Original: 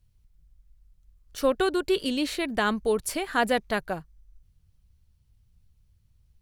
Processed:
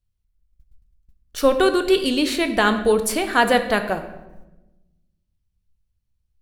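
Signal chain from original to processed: gate -52 dBFS, range -17 dB; bell 110 Hz -6 dB 1.3 oct; on a send: reverb RT60 1.0 s, pre-delay 9 ms, DRR 7.5 dB; on the sum: gain +7 dB

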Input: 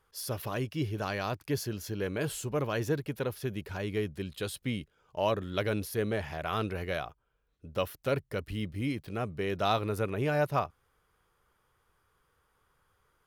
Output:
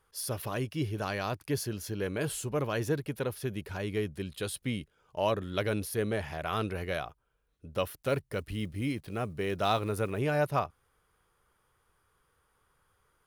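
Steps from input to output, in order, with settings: 7.96–10.21 block floating point 7-bit; bell 9700 Hz +6.5 dB 0.22 oct

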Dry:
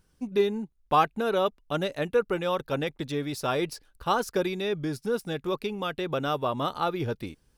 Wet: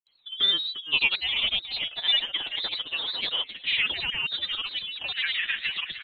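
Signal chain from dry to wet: speed glide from 86% -> 165%; inverted band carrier 3700 Hz; on a send: feedback echo 0.345 s, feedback 49%, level -10.5 dB; on the sum: grains, pitch spread up and down by 3 st

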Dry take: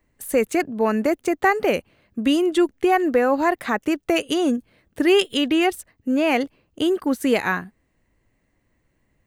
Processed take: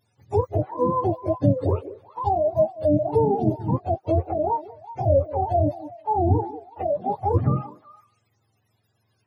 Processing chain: spectrum mirrored in octaves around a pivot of 470 Hz; delay with a stepping band-pass 0.187 s, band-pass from 410 Hz, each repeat 1.4 oct, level -11.5 dB; dynamic EQ 250 Hz, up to -3 dB, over -30 dBFS, Q 1.8

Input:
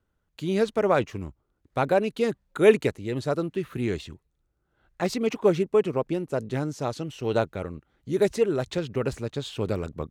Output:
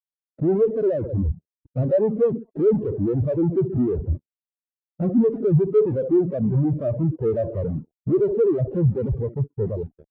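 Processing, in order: ending faded out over 2.00 s; steep low-pass 660 Hz 36 dB/oct; in parallel at +0.5 dB: compressor 8:1, threshold -31 dBFS, peak gain reduction 19.5 dB; on the sum: requantised 8-bit, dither none; limiter -17 dBFS, peak gain reduction 11.5 dB; feedback echo 65 ms, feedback 52%, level -19 dB; 6.39–7.19 expander -32 dBFS; fuzz box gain 52 dB, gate -53 dBFS; reverb removal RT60 0.57 s; spectral expander 2.5:1

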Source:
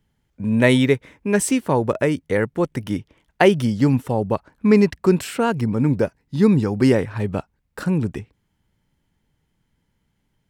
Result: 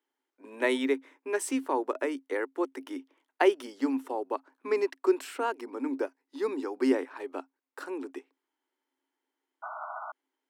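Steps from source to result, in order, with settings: rippled Chebyshev high-pass 260 Hz, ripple 6 dB; painted sound noise, 9.62–10.12, 610–1500 Hz -33 dBFS; gain -6 dB

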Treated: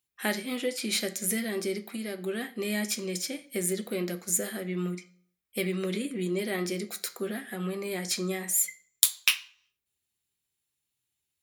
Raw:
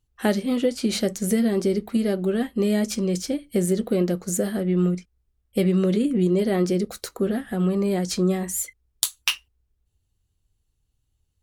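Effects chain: 1.77–2.21 compressor 2.5:1, threshold -23 dBFS, peak gain reduction 4.5 dB; tilt +3.5 dB/oct; reverb RT60 0.55 s, pre-delay 3 ms, DRR 9 dB; gain -8.5 dB

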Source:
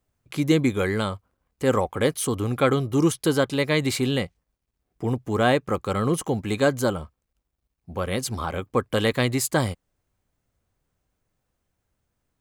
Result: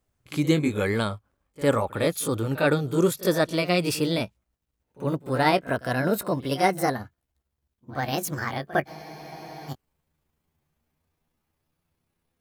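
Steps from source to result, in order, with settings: gliding pitch shift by +9 st starting unshifted; pre-echo 56 ms -18.5 dB; spectral freeze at 8.9, 0.80 s

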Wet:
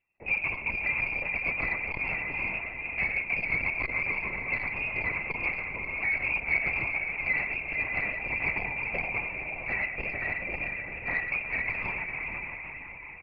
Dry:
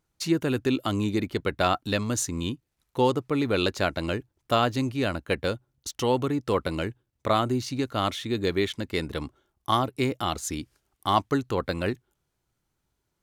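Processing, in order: block floating point 3-bit; Chebyshev band-stop 780–1800 Hz, order 2; low shelf 260 Hz -7 dB; notches 60/120/180/240/300/360/420/480 Hz; comb 6.3 ms; compressor 2.5:1, threshold -27 dBFS, peak gain reduction 6.5 dB; diffused feedback echo 0.488 s, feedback 51%, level -4 dB; non-linear reverb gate 0.15 s rising, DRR 7 dB; inverted band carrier 2700 Hz; LPC vocoder at 8 kHz whisper; core saturation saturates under 270 Hz

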